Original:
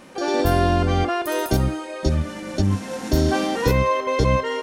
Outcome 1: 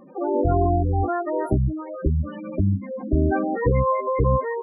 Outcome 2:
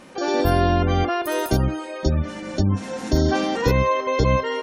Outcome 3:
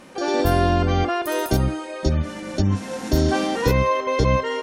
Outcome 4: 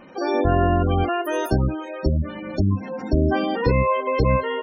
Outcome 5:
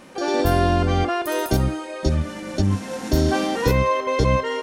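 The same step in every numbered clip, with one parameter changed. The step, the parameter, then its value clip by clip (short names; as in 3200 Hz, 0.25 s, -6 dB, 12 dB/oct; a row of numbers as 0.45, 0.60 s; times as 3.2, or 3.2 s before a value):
spectral gate, under each frame's peak: -10, -35, -45, -20, -60 dB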